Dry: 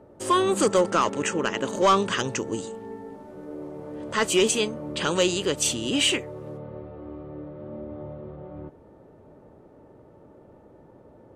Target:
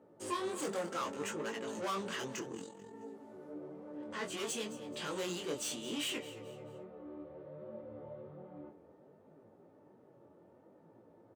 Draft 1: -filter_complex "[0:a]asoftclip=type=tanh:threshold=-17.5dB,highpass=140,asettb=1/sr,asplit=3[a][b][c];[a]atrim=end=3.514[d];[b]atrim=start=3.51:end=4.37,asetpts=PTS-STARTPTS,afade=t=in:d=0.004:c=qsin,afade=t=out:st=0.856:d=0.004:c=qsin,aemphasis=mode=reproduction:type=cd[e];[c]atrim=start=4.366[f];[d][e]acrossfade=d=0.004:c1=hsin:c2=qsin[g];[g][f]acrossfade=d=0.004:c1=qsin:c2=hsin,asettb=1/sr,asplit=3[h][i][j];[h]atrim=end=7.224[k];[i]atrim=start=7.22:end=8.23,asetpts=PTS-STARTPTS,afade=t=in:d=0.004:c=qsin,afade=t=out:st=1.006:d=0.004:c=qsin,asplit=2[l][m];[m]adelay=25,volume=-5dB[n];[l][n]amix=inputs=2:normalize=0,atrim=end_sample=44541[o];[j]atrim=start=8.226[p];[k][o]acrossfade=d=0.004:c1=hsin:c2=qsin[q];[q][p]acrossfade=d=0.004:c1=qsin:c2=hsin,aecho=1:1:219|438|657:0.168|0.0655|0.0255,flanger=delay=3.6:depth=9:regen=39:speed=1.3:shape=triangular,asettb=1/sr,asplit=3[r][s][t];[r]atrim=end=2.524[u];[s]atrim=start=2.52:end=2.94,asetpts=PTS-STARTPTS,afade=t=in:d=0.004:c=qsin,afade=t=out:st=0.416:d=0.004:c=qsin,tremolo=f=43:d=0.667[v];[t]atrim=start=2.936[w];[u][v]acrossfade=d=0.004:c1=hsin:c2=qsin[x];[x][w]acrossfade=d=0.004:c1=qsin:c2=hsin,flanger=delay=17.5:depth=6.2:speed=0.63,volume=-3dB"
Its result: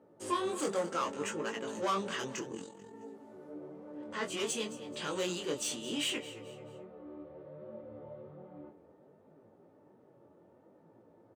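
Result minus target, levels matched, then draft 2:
soft clip: distortion -7 dB
-filter_complex "[0:a]asoftclip=type=tanh:threshold=-24.5dB,highpass=140,asettb=1/sr,asplit=3[a][b][c];[a]atrim=end=3.514[d];[b]atrim=start=3.51:end=4.37,asetpts=PTS-STARTPTS,afade=t=in:d=0.004:c=qsin,afade=t=out:st=0.856:d=0.004:c=qsin,aemphasis=mode=reproduction:type=cd[e];[c]atrim=start=4.366[f];[d][e]acrossfade=d=0.004:c1=hsin:c2=qsin[g];[g][f]acrossfade=d=0.004:c1=qsin:c2=hsin,asettb=1/sr,asplit=3[h][i][j];[h]atrim=end=7.224[k];[i]atrim=start=7.22:end=8.23,asetpts=PTS-STARTPTS,afade=t=in:d=0.004:c=qsin,afade=t=out:st=1.006:d=0.004:c=qsin,asplit=2[l][m];[m]adelay=25,volume=-5dB[n];[l][n]amix=inputs=2:normalize=0,atrim=end_sample=44541[o];[j]atrim=start=8.226[p];[k][o]acrossfade=d=0.004:c1=hsin:c2=qsin[q];[q][p]acrossfade=d=0.004:c1=qsin:c2=hsin,aecho=1:1:219|438|657:0.168|0.0655|0.0255,flanger=delay=3.6:depth=9:regen=39:speed=1.3:shape=triangular,asettb=1/sr,asplit=3[r][s][t];[r]atrim=end=2.524[u];[s]atrim=start=2.52:end=2.94,asetpts=PTS-STARTPTS,afade=t=in:d=0.004:c=qsin,afade=t=out:st=0.416:d=0.004:c=qsin,tremolo=f=43:d=0.667[v];[t]atrim=start=2.936[w];[u][v]acrossfade=d=0.004:c1=hsin:c2=qsin[x];[x][w]acrossfade=d=0.004:c1=qsin:c2=hsin,flanger=delay=17.5:depth=6.2:speed=0.63,volume=-3dB"

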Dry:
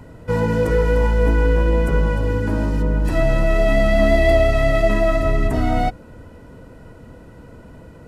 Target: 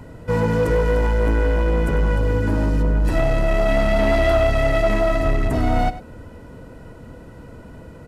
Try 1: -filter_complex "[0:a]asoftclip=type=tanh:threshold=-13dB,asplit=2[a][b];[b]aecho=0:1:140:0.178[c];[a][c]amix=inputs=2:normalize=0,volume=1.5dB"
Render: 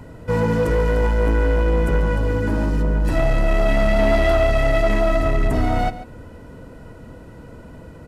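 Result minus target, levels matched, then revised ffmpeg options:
echo 42 ms late
-filter_complex "[0:a]asoftclip=type=tanh:threshold=-13dB,asplit=2[a][b];[b]aecho=0:1:98:0.178[c];[a][c]amix=inputs=2:normalize=0,volume=1.5dB"

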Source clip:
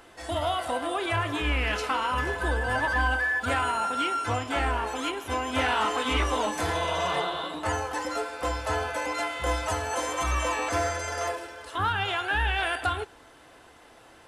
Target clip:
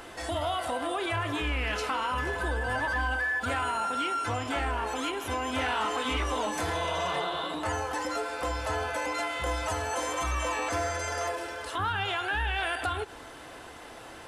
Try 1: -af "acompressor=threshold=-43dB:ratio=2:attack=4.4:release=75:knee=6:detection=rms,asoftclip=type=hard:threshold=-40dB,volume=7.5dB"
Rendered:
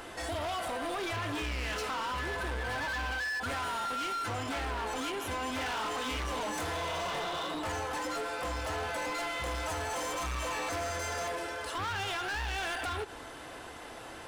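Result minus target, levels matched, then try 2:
hard clip: distortion +30 dB
-af "acompressor=threshold=-43dB:ratio=2:attack=4.4:release=75:knee=6:detection=rms,asoftclip=type=hard:threshold=-28.5dB,volume=7.5dB"

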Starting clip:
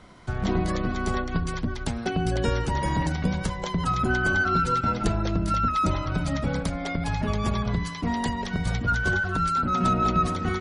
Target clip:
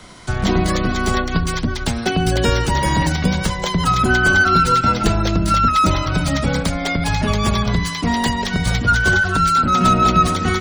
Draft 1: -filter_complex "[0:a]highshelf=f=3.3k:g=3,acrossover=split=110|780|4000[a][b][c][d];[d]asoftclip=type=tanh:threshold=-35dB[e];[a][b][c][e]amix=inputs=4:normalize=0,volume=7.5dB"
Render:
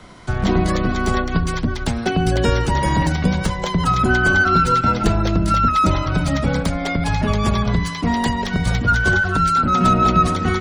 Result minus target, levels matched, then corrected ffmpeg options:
8000 Hz band -4.5 dB
-filter_complex "[0:a]highshelf=f=3.3k:g=13,acrossover=split=110|780|4000[a][b][c][d];[d]asoftclip=type=tanh:threshold=-35dB[e];[a][b][c][e]amix=inputs=4:normalize=0,volume=7.5dB"

